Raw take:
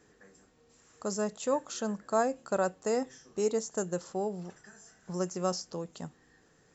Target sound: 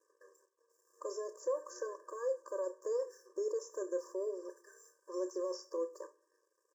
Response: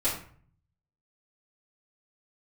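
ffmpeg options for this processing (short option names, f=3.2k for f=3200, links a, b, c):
-filter_complex "[0:a]equalizer=f=740:w=0.74:g=4.5,alimiter=level_in=3dB:limit=-24dB:level=0:latency=1:release=18,volume=-3dB,aeval=exprs='sgn(val(0))*max(abs(val(0))-0.001,0)':c=same,asuperstop=centerf=2900:order=12:qfactor=0.82,asplit=2[a][b];[b]adelay=30,volume=-13.5dB[c];[a][c]amix=inputs=2:normalize=0,asplit=2[d][e];[1:a]atrim=start_sample=2205[f];[e][f]afir=irnorm=-1:irlink=0,volume=-21.5dB[g];[d][g]amix=inputs=2:normalize=0,acrossover=split=4800[h][i];[i]acompressor=threshold=-53dB:ratio=4:attack=1:release=60[j];[h][j]amix=inputs=2:normalize=0,afftfilt=real='re*eq(mod(floor(b*sr/1024/310),2),1)':imag='im*eq(mod(floor(b*sr/1024/310),2),1)':win_size=1024:overlap=0.75"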